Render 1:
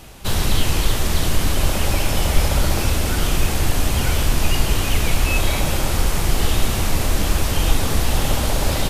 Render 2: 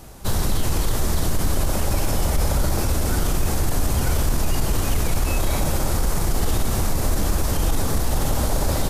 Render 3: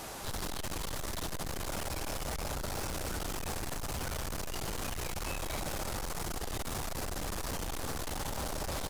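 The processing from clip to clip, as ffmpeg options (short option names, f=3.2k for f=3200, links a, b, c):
-af "equalizer=f=2.8k:t=o:w=1.2:g=-9.5,alimiter=limit=-11.5dB:level=0:latency=1:release=24"
-filter_complex "[0:a]aecho=1:1:118:0.0841,asoftclip=type=tanh:threshold=-24.5dB,asplit=2[a][b];[b]highpass=f=720:p=1,volume=21dB,asoftclip=type=tanh:threshold=-24.5dB[c];[a][c]amix=inputs=2:normalize=0,lowpass=f=6.3k:p=1,volume=-6dB,volume=-6.5dB"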